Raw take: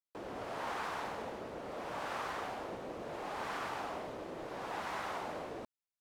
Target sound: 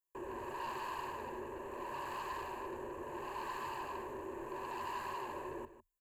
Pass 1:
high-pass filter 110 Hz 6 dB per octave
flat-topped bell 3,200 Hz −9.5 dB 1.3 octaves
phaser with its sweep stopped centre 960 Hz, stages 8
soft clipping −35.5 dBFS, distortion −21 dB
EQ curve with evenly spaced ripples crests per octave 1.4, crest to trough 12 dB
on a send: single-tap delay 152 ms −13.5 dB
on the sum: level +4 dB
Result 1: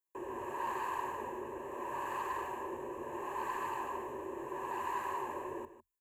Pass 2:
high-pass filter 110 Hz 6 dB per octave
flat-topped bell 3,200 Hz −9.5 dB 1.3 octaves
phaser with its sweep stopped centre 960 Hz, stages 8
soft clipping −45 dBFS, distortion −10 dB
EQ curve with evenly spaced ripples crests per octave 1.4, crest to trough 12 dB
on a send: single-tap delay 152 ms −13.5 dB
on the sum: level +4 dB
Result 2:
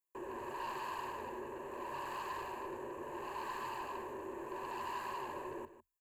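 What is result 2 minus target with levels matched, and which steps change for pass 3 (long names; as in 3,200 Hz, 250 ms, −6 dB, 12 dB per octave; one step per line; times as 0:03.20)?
125 Hz band −2.5 dB
remove: high-pass filter 110 Hz 6 dB per octave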